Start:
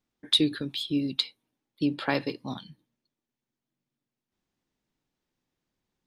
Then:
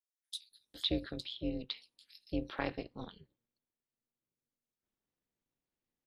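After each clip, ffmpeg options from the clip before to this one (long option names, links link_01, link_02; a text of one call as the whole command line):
ffmpeg -i in.wav -filter_complex "[0:a]acrossover=split=4800[link_01][link_02];[link_01]adelay=510[link_03];[link_03][link_02]amix=inputs=2:normalize=0,tremolo=f=240:d=0.947,volume=-5.5dB" out.wav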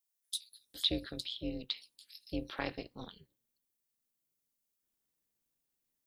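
ffmpeg -i in.wav -af "crystalizer=i=2.5:c=0,volume=-2dB" out.wav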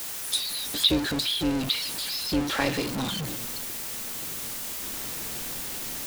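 ffmpeg -i in.wav -af "aeval=exprs='val(0)+0.5*0.0211*sgn(val(0))':channel_layout=same,highshelf=frequency=12000:gain=-3,volume=8.5dB" out.wav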